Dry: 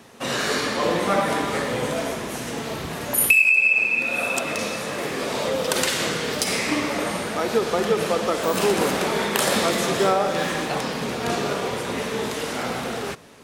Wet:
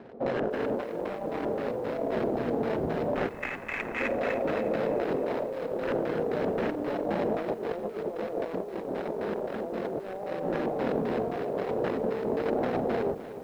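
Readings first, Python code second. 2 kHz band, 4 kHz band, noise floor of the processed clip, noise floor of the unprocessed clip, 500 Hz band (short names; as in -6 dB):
-16.0 dB, -22.0 dB, -40 dBFS, -31 dBFS, -4.0 dB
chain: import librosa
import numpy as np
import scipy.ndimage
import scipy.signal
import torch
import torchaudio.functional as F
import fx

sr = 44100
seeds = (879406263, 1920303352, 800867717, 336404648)

y = scipy.ndimage.median_filter(x, 41, mode='constant')
y = fx.bass_treble(y, sr, bass_db=-10, treble_db=0)
y = fx.hum_notches(y, sr, base_hz=50, count=6)
y = fx.over_compress(y, sr, threshold_db=-35.0, ratio=-1.0)
y = fx.sample_hold(y, sr, seeds[0], rate_hz=4600.0, jitter_pct=20)
y = fx.filter_lfo_lowpass(y, sr, shape='square', hz=3.8, low_hz=770.0, high_hz=2000.0, q=1.0)
y = fx.echo_crushed(y, sr, ms=305, feedback_pct=55, bits=9, wet_db=-14)
y = y * 10.0 ** (3.5 / 20.0)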